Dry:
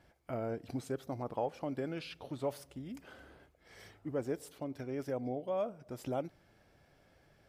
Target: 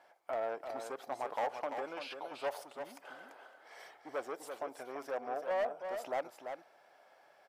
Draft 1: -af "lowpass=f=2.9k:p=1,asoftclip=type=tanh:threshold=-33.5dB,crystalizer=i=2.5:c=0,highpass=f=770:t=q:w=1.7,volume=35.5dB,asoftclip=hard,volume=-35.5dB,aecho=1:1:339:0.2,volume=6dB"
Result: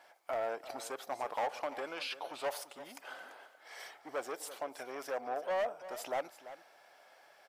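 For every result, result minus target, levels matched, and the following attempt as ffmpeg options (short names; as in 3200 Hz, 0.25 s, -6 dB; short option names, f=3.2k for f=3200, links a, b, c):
4000 Hz band +5.5 dB; echo-to-direct -7 dB
-af "lowpass=f=1k:p=1,asoftclip=type=tanh:threshold=-33.5dB,crystalizer=i=2.5:c=0,highpass=f=770:t=q:w=1.7,volume=35.5dB,asoftclip=hard,volume=-35.5dB,aecho=1:1:339:0.2,volume=6dB"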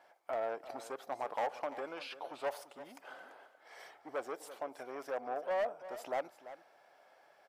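echo-to-direct -7 dB
-af "lowpass=f=1k:p=1,asoftclip=type=tanh:threshold=-33.5dB,crystalizer=i=2.5:c=0,highpass=f=770:t=q:w=1.7,volume=35.5dB,asoftclip=hard,volume=-35.5dB,aecho=1:1:339:0.447,volume=6dB"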